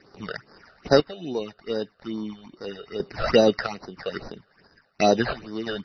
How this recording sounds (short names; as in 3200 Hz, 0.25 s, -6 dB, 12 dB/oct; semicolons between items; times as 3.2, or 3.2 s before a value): aliases and images of a low sample rate 3300 Hz, jitter 0%; phasing stages 8, 2.4 Hz, lowest notch 270–2700 Hz; random-step tremolo 3 Hz, depth 80%; MP3